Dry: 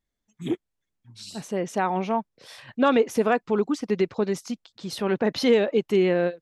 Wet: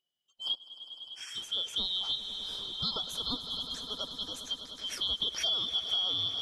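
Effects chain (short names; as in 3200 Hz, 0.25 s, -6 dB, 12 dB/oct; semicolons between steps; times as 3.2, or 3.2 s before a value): four-band scrambler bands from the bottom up 2413; 2.15–4.51 band shelf 2600 Hz -12.5 dB 1.1 oct; swelling echo 0.101 s, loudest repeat 5, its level -16 dB; compressor 6:1, threshold -23 dBFS, peak gain reduction 9 dB; gain -5 dB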